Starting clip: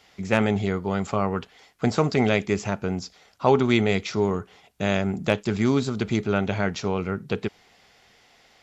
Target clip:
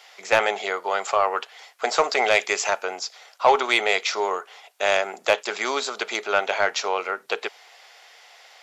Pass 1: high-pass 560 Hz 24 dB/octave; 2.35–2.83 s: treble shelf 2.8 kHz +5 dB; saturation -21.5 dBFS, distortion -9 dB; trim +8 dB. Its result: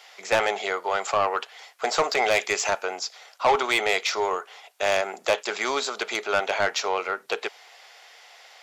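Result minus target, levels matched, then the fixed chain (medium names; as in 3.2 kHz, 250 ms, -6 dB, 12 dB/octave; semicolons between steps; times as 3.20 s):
saturation: distortion +7 dB
high-pass 560 Hz 24 dB/octave; 2.35–2.83 s: treble shelf 2.8 kHz +5 dB; saturation -14 dBFS, distortion -17 dB; trim +8 dB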